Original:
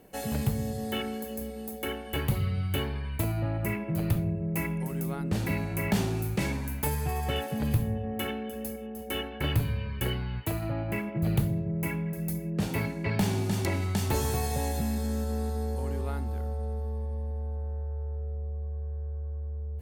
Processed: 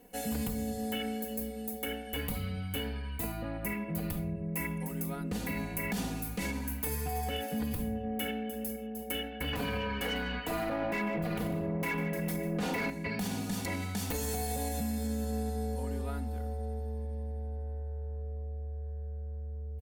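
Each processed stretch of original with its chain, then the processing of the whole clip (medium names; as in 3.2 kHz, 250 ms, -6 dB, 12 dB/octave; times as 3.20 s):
9.53–12.90 s: overdrive pedal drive 24 dB, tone 1.4 kHz, clips at -15 dBFS + delay 148 ms -15 dB
whole clip: comb 4.1 ms, depth 92%; peak limiter -20 dBFS; treble shelf 7.2 kHz +6 dB; trim -5.5 dB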